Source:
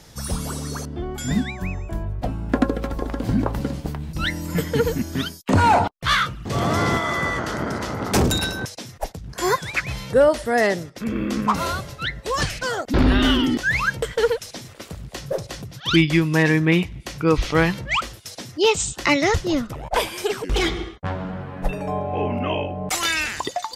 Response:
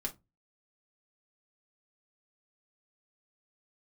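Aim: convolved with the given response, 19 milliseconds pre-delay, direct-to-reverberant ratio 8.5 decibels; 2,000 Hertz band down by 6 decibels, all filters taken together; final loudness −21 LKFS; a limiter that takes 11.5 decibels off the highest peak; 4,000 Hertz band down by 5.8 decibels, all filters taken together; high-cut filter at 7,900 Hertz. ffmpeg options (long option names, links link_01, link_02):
-filter_complex "[0:a]lowpass=7900,equalizer=frequency=2000:width_type=o:gain=-6.5,equalizer=frequency=4000:width_type=o:gain=-5,alimiter=limit=-18.5dB:level=0:latency=1,asplit=2[link_01][link_02];[1:a]atrim=start_sample=2205,adelay=19[link_03];[link_02][link_03]afir=irnorm=-1:irlink=0,volume=-9.5dB[link_04];[link_01][link_04]amix=inputs=2:normalize=0,volume=7dB"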